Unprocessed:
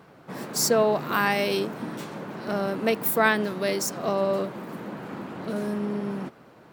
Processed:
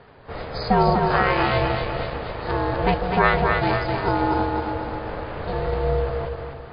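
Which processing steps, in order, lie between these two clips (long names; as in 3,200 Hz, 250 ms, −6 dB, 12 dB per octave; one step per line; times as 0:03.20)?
dynamic equaliser 3,900 Hz, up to −5 dB, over −40 dBFS, Q 0.91
on a send: echo with a time of its own for lows and highs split 410 Hz, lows 164 ms, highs 250 ms, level −4 dB
on the sum: ring modulation 270 Hz
level +6.5 dB
MP3 24 kbit/s 11,025 Hz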